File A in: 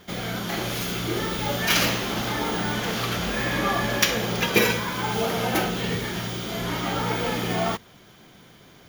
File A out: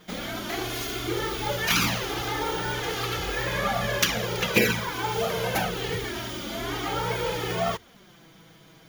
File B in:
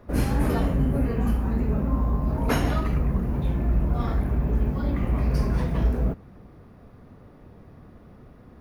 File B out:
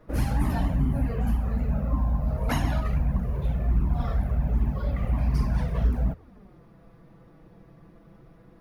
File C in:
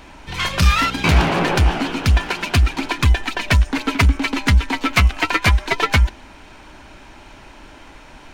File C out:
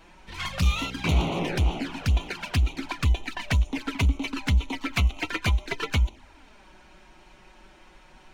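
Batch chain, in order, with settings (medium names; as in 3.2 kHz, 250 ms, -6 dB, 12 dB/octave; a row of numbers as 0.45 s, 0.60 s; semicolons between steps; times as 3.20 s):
touch-sensitive flanger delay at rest 6.6 ms, full sweep at -13.5 dBFS; normalise loudness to -27 LUFS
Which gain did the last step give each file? +1.0 dB, 0.0 dB, -7.5 dB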